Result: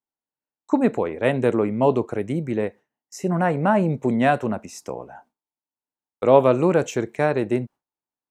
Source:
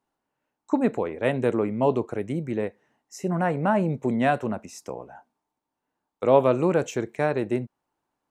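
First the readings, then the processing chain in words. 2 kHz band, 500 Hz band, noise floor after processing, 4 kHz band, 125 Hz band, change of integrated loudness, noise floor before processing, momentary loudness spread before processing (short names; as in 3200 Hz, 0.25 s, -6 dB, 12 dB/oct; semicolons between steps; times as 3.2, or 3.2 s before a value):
+3.5 dB, +3.5 dB, under -85 dBFS, +3.5 dB, +3.5 dB, +3.5 dB, -84 dBFS, 13 LU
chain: gate with hold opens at -46 dBFS; gain +3.5 dB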